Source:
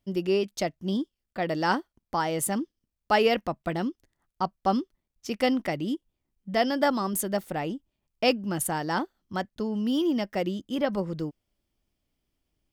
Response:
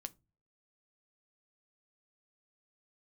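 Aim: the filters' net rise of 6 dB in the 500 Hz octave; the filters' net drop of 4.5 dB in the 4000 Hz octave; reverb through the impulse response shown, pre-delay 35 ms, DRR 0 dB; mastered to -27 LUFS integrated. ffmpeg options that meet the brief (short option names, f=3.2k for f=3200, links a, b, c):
-filter_complex "[0:a]equalizer=f=500:t=o:g=7.5,equalizer=f=4k:t=o:g=-7,asplit=2[a][b];[1:a]atrim=start_sample=2205,adelay=35[c];[b][c]afir=irnorm=-1:irlink=0,volume=4dB[d];[a][d]amix=inputs=2:normalize=0,volume=-5.5dB"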